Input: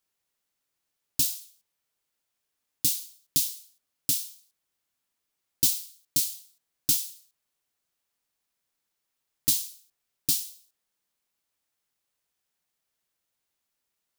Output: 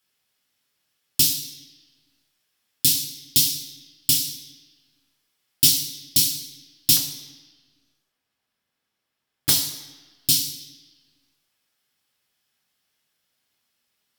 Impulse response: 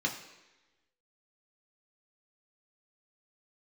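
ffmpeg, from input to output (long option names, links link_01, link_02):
-filter_complex "[0:a]asetnsamples=nb_out_samples=441:pad=0,asendcmd='6.97 highshelf g -2.5;9.49 highshelf g 7',highshelf=frequency=2700:gain=8[link_01];[1:a]atrim=start_sample=2205,asetrate=35280,aresample=44100[link_02];[link_01][link_02]afir=irnorm=-1:irlink=0,volume=-1dB"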